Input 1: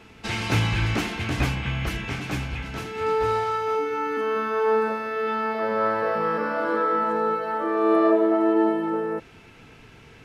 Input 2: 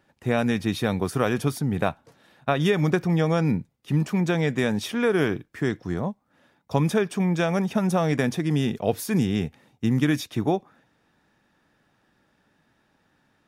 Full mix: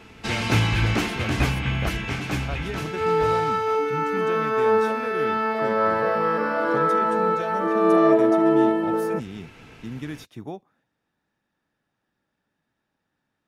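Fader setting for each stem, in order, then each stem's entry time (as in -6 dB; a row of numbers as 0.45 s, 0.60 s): +2.0 dB, -12.0 dB; 0.00 s, 0.00 s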